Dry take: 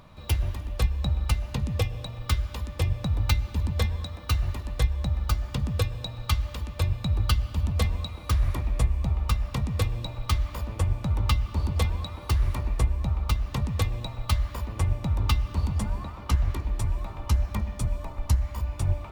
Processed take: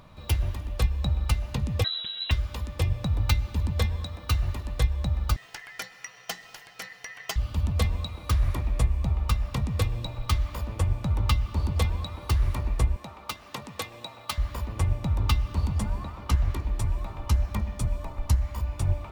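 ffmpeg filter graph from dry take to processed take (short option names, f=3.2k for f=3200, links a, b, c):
-filter_complex "[0:a]asettb=1/sr,asplit=3[a][b][c];[a]atrim=end=1.844[d];[b]atrim=start=1.84:end=2.31,asetpts=PTS-STARTPTS,afade=t=in:d=0.004:c=qsin,afade=t=out:st=0.466:d=0.004:c=qsin,aecho=1:1:6.6:0.63,atrim=end_sample=20727,lowpass=f=3.4k:t=q:w=0.5098,lowpass=f=3.4k:t=q:w=0.6013,lowpass=f=3.4k:t=q:w=0.9,lowpass=f=3.4k:t=q:w=2.563,afreqshift=-4000[e];[c]atrim=start=2.306[f];[d][e]acrossfade=d=0.004:c1=hsin:c2=qsin[g];[g][f]acrossfade=d=0.004:c1=qsin:c2=hsin,asettb=1/sr,asplit=3[h][i][j];[h]atrim=end=5.364[k];[i]atrim=start=5.36:end=7.36,asetpts=PTS-STARTPTS,afade=t=in:d=0.004:c=qsin,afade=t=out:st=1.996:d=0.004:c=qsin,highpass=f=680:p=1,aeval=exprs='val(0)*sin(2*PI*1900*n/s)':c=same[l];[j]atrim=start=7.356[m];[k][l]acrossfade=d=0.004:c1=hsin:c2=qsin[n];[n][m]acrossfade=d=0.004:c1=qsin:c2=hsin,asettb=1/sr,asplit=3[o][p][q];[o]atrim=end=12.964[r];[p]atrim=start=12.96:end=14.38,asetpts=PTS-STARTPTS,afade=t=in:d=0.004:c=qsin,afade=t=out:st=1.416:d=0.004:c=qsin,highpass=230,lowshelf=f=390:g=-6.5[s];[q]atrim=start=14.376[t];[r][s]acrossfade=d=0.004:c1=hsin:c2=qsin[u];[u][t]acrossfade=d=0.004:c1=qsin:c2=hsin"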